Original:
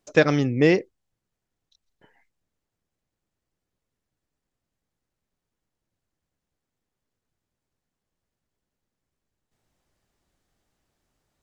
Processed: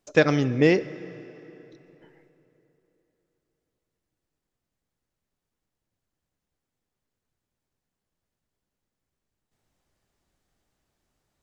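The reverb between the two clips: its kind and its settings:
dense smooth reverb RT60 3.5 s, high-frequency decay 0.75×, DRR 15.5 dB
level −1 dB

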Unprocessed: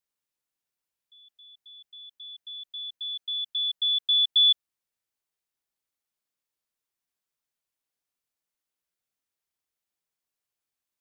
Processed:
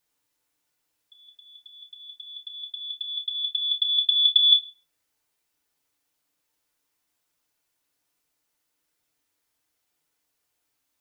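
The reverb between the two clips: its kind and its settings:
feedback delay network reverb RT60 0.44 s, low-frequency decay 0.9×, high-frequency decay 0.7×, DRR 0.5 dB
level +8.5 dB

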